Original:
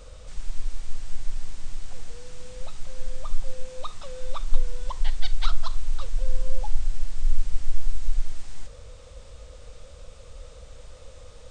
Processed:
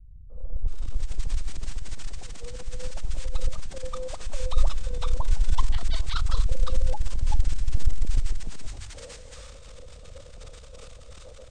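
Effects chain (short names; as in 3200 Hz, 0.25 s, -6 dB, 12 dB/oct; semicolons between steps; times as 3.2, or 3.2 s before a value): transient shaper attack -6 dB, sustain +11 dB; three bands offset in time lows, mids, highs 0.3/0.68 s, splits 170/860 Hz; gain -2.5 dB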